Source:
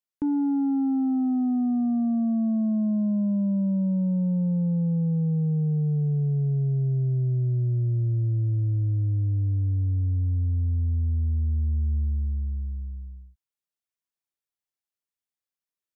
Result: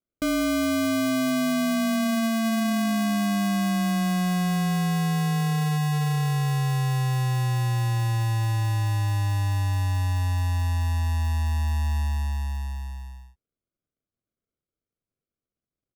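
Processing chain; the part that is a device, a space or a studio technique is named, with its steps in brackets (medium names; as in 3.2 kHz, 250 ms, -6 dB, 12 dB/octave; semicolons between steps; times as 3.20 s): crushed at another speed (playback speed 1.25×; sample-and-hold 39×; playback speed 0.8×)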